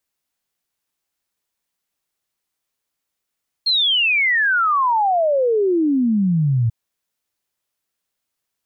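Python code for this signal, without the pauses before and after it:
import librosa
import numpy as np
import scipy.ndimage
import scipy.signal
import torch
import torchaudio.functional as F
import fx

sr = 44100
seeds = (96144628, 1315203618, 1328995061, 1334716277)

y = fx.ess(sr, length_s=3.04, from_hz=4300.0, to_hz=110.0, level_db=-14.0)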